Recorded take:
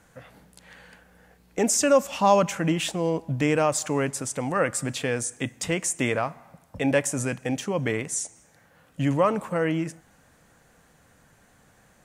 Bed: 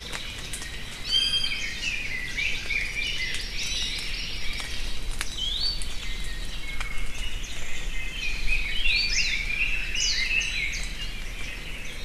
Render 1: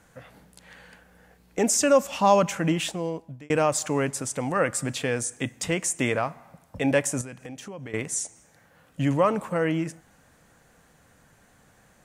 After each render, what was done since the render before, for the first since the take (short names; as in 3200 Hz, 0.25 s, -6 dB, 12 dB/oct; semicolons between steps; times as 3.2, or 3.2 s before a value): 2.76–3.5 fade out; 7.21–7.94 compressor 3:1, threshold -39 dBFS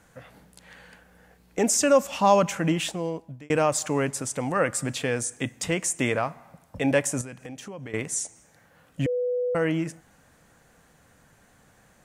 9.06–9.55 bleep 494 Hz -23 dBFS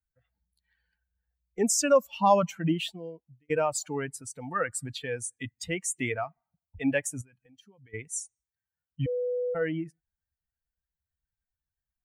per-bin expansion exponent 2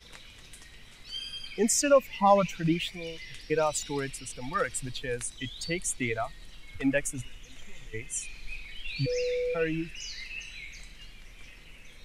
add bed -15 dB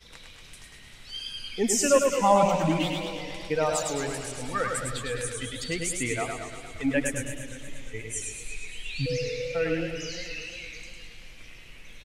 feedback echo 0.104 s, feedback 47%, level -4.5 dB; warbling echo 0.117 s, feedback 75%, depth 157 cents, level -11 dB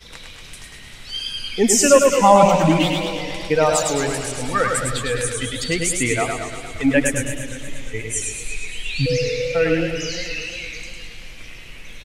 gain +9 dB; limiter -1 dBFS, peak gain reduction 1.5 dB